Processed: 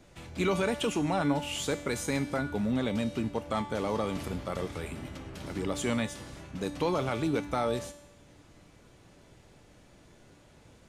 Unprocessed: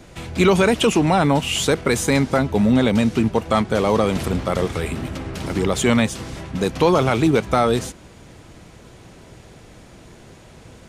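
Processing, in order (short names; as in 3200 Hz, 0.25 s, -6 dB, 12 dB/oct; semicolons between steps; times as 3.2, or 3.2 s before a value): resonator 290 Hz, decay 0.8 s, mix 80%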